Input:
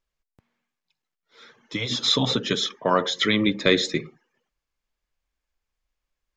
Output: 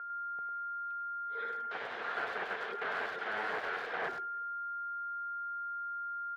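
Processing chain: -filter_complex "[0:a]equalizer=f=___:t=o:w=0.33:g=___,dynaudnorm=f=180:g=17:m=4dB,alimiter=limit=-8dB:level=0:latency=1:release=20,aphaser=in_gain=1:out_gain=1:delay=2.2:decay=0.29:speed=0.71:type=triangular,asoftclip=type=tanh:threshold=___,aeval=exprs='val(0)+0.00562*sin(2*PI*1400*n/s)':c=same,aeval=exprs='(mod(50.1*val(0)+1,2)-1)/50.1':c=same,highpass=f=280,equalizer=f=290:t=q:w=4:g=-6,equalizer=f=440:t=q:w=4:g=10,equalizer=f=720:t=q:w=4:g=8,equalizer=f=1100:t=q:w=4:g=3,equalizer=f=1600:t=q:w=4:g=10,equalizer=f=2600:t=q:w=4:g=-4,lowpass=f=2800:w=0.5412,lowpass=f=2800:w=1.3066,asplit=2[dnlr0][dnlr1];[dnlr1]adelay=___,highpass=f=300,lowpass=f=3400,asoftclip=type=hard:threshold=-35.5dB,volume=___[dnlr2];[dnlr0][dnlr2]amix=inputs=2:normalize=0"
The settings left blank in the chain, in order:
1400, -7.5, -24.5dB, 100, -7dB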